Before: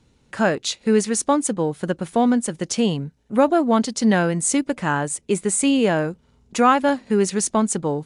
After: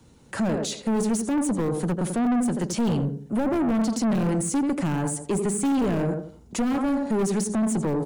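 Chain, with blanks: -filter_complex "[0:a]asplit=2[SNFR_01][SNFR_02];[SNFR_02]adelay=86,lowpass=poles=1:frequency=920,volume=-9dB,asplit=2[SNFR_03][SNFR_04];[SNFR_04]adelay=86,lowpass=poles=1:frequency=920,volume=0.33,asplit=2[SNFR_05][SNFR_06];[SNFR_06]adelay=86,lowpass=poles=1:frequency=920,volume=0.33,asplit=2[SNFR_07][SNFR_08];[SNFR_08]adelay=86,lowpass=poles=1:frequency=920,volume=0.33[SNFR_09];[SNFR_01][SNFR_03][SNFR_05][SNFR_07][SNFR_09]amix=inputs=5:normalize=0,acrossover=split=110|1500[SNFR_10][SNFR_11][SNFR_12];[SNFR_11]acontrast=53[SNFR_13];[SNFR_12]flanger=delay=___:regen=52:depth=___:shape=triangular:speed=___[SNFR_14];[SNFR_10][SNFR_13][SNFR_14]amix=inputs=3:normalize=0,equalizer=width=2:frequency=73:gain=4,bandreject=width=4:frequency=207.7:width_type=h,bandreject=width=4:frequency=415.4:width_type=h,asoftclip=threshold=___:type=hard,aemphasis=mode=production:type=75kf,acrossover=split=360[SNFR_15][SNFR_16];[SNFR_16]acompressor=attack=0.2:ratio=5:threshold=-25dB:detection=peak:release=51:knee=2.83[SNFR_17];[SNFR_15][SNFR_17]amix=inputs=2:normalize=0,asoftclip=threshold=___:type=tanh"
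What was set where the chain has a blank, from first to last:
2.9, 2.5, 1.6, -9dB, -20dB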